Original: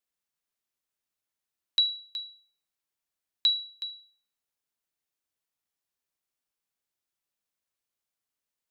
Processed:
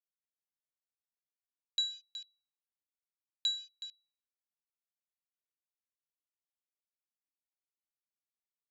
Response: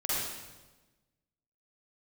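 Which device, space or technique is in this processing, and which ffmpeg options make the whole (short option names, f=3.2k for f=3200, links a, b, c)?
over-cleaned archive recording: -af "highpass=150,lowpass=5.8k,afwtdn=0.00708,volume=-7.5dB"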